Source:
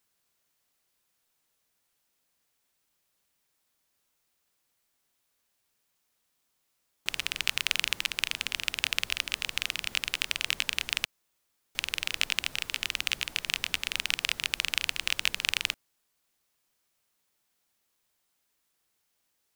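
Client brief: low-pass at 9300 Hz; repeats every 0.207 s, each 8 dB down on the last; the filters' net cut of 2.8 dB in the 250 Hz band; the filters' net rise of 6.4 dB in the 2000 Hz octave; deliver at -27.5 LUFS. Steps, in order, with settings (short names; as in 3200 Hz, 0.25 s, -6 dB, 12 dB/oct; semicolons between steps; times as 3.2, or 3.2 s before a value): LPF 9300 Hz; bell 250 Hz -4 dB; bell 2000 Hz +8.5 dB; feedback echo 0.207 s, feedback 40%, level -8 dB; gain -3 dB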